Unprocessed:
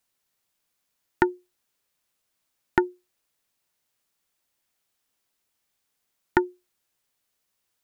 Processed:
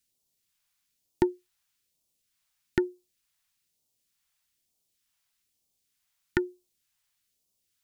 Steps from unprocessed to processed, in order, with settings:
all-pass phaser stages 2, 1.1 Hz, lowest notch 330–1,600 Hz

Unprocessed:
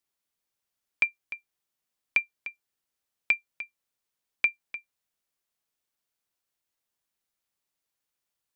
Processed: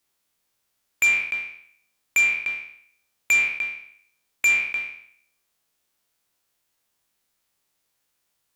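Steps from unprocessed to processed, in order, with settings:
peak hold with a decay on every bin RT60 0.64 s
in parallel at −10.5 dB: sine wavefolder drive 11 dB, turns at −11 dBFS

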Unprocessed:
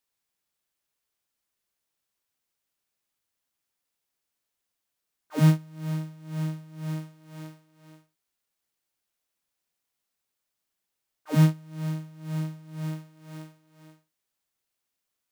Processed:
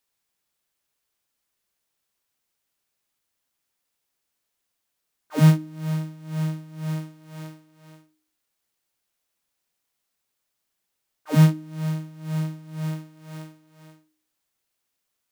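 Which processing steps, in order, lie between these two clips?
hum removal 103.1 Hz, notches 3
level +4 dB

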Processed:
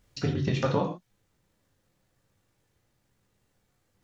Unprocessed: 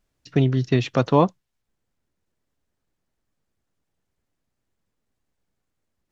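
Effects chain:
downward compressor 8 to 1, threshold −31 dBFS, peak gain reduction 19 dB
time stretch by overlap-add 0.66×, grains 38 ms
reverb whose tail is shaped and stops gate 170 ms falling, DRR 0 dB
level +7 dB

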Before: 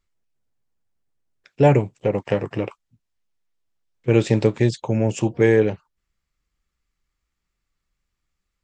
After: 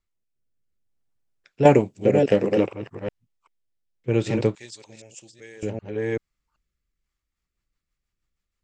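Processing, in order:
delay that plays each chunk backwards 386 ms, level −6 dB
0:01.65–0:02.66: drawn EQ curve 140 Hz 0 dB, 220 Hz +9 dB, 2,200 Hz +7 dB, 4,700 Hz +12 dB
rotating-speaker cabinet horn 0.6 Hz, later 6.3 Hz, at 0:06.73
0:04.55–0:05.63: first-order pre-emphasis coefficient 0.97
level −3 dB

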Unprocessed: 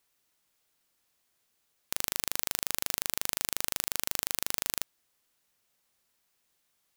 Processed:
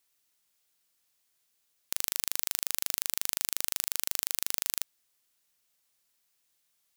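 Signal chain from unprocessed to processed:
high-shelf EQ 2,200 Hz +8 dB
level −6.5 dB

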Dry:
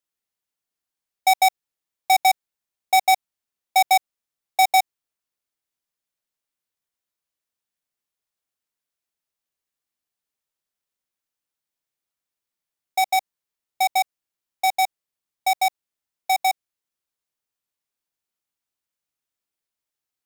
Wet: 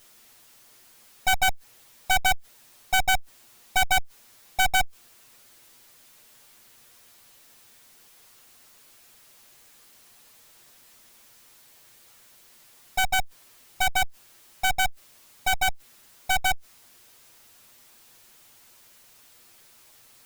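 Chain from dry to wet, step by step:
lower of the sound and its delayed copy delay 8.4 ms
power curve on the samples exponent 0.5
level −5 dB

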